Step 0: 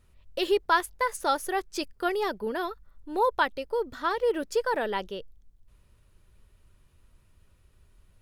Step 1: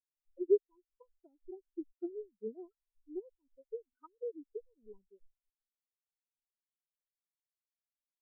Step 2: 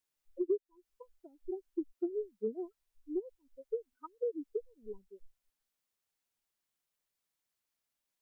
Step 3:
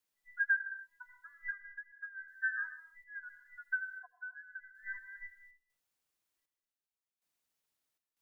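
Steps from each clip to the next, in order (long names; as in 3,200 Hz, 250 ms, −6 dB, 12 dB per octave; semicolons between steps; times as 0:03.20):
treble cut that deepens with the level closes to 320 Hz, closed at −24 dBFS; dynamic equaliser 500 Hz, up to −6 dB, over −44 dBFS, Q 0.9; every bin expanded away from the loudest bin 4 to 1; level +4 dB
downward compressor 5 to 1, threshold −39 dBFS, peak gain reduction 16 dB; level +8.5 dB
frequency inversion band by band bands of 2,000 Hz; gate pattern "xxx.xxxx....x" 79 BPM −12 dB; on a send at −10 dB: convolution reverb, pre-delay 75 ms; on the sum: level +1 dB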